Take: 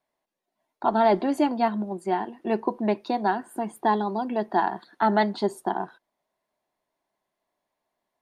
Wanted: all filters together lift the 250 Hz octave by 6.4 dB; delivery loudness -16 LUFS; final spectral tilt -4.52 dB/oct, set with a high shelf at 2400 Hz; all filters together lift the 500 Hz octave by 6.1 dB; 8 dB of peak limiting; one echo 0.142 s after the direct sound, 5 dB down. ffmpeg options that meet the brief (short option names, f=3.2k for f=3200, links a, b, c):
-af "equalizer=f=250:t=o:g=6,equalizer=f=500:t=o:g=7.5,highshelf=f=2.4k:g=-8,alimiter=limit=-13.5dB:level=0:latency=1,aecho=1:1:142:0.562,volume=7dB"